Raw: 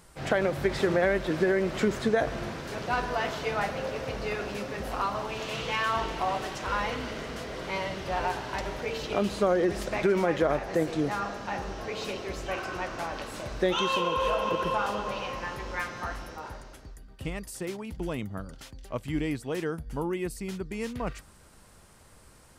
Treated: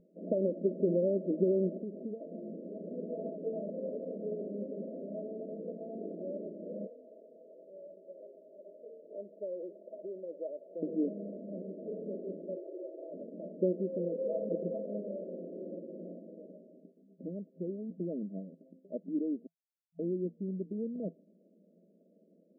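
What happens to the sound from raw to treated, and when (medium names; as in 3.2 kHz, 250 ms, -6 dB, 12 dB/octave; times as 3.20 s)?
1.77–2.91 s: compression 16:1, threshold -32 dBFS
6.87–10.83 s: high-pass 890 Hz
12.55–13.14 s: steep high-pass 320 Hz 72 dB/octave
15.08–16.19 s: flutter echo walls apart 9.5 m, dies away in 1.2 s
19.47–19.99 s: mute
whole clip: FFT band-pass 170–670 Hz; tilt EQ -2.5 dB/octave; trim -6.5 dB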